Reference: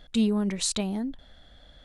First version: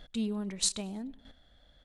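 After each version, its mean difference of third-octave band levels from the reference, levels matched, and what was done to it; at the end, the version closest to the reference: 2.5 dB: on a send: feedback echo 0.1 s, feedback 48%, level -21.5 dB; on the sum: chopper 1.6 Hz, depth 65%, duty 10%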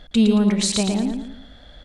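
4.0 dB: high shelf 8800 Hz -7.5 dB; feedback echo 0.112 s, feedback 38%, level -5 dB; gain +7 dB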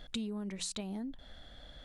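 6.0 dB: notches 60/120/180 Hz; compressor 6:1, threshold -38 dBFS, peak gain reduction 17 dB; gain +1 dB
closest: first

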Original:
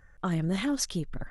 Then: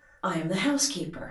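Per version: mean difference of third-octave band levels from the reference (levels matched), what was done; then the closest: 5.5 dB: HPF 460 Hz 6 dB/oct; shoebox room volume 140 m³, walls furnished, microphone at 2.5 m; gain +1 dB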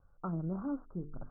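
8.0 dB: steep low-pass 1400 Hz 96 dB/oct; notches 50/100/150/200/250/300/350/400/450 Hz; gain -7 dB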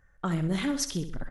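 3.0 dB: gate -43 dBFS, range -6 dB; on a send: feedback echo 64 ms, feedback 43%, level -10.5 dB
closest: third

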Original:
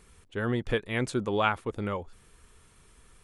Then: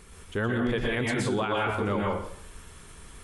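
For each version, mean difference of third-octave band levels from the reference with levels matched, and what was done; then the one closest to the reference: 8.0 dB: plate-style reverb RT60 0.58 s, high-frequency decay 0.85×, pre-delay 0.105 s, DRR -2.5 dB; in parallel at +1 dB: compressor, threshold -36 dBFS, peak gain reduction 16 dB; on the sum: limiter -18.5 dBFS, peak gain reduction 11.5 dB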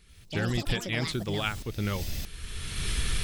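13.5 dB: recorder AGC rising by 25 dB/s; graphic EQ 250/500/1000/4000/8000 Hz -5/-8/-12/+6/-7 dB; echoes that change speed 92 ms, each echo +7 st, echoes 3, each echo -6 dB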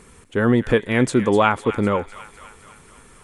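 2.5 dB: graphic EQ 125/250/500/1000/2000/8000 Hz +5/+9/+6/+6/+5/+7 dB; in parallel at -2 dB: limiter -14 dBFS, peak gain reduction 11.5 dB; on the sum: thin delay 0.252 s, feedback 60%, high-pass 1400 Hz, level -11 dB; gain -1 dB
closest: third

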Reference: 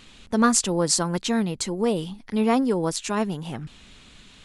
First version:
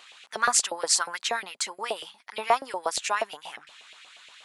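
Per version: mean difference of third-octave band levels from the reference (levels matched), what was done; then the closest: 8.5 dB: low shelf 270 Hz -5.5 dB; LFO high-pass saw up 8.4 Hz 600–2600 Hz; gain -1 dB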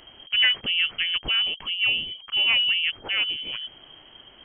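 14.0 dB: soft clip -9.5 dBFS, distortion -23 dB; inverted band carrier 3200 Hz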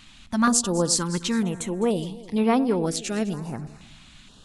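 3.5 dB: on a send: echo with dull and thin repeats by turns 0.104 s, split 840 Hz, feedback 65%, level -13 dB; on the sum: stepped notch 2.1 Hz 450–7100 Hz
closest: third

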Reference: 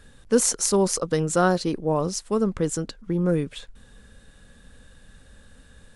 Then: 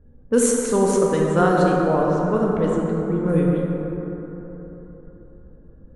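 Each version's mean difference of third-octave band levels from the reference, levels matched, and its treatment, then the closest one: 9.0 dB: low-pass opened by the level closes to 400 Hz, open at -16.5 dBFS; bell 5000 Hz -13 dB 0.49 oct; plate-style reverb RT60 3.9 s, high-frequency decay 0.35×, DRR -2.5 dB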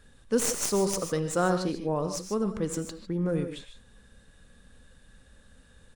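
4.5 dB: tracing distortion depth 0.051 ms; echo 87 ms -23 dB; non-linear reverb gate 0.17 s rising, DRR 7 dB; gain -6 dB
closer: second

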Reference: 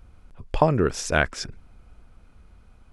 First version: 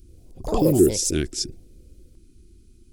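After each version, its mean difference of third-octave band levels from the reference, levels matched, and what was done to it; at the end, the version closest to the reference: 9.0 dB: EQ curve 210 Hz 0 dB, 360 Hz +13 dB, 540 Hz -21 dB, 880 Hz -29 dB, 4600 Hz +5 dB, 8000 Hz +10 dB; echoes that change speed 87 ms, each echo +6 st, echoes 3, each echo -6 dB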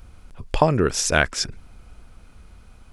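2.0 dB: high shelf 2900 Hz +7.5 dB; in parallel at -3 dB: compressor, threshold -29 dBFS, peak gain reduction 16 dB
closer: second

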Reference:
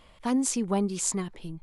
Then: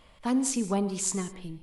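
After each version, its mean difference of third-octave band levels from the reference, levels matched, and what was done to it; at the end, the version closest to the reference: 2.5 dB: non-linear reverb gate 0.22 s flat, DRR 11.5 dB; gain -1 dB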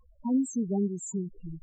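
12.0 dB: loudest bins only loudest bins 4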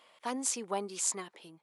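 5.0 dB: HPF 480 Hz 12 dB/oct; gain -2.5 dB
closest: first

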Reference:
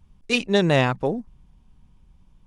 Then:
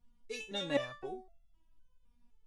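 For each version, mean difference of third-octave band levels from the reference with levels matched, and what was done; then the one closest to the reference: 6.5 dB: stepped resonator 3.9 Hz 240–680 Hz; gain +1.5 dB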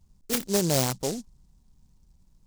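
10.0 dB: noise-modulated delay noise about 5900 Hz, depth 0.16 ms; gain -5.5 dB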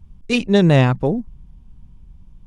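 3.5 dB: low shelf 290 Hz +11.5 dB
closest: third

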